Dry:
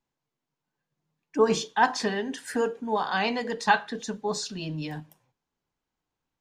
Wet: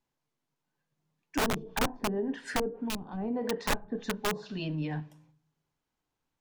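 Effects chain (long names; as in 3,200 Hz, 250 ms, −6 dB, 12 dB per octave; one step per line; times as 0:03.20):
wavefolder on the positive side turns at −22 dBFS
on a send at −16.5 dB: convolution reverb RT60 0.60 s, pre-delay 3 ms
on the sum: treble cut that deepens with the level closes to 350 Hz, closed at −23 dBFS
wrap-around overflow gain 22 dB
gain on a spectral selection 0:02.88–0:03.17, 350–2,400 Hz −10 dB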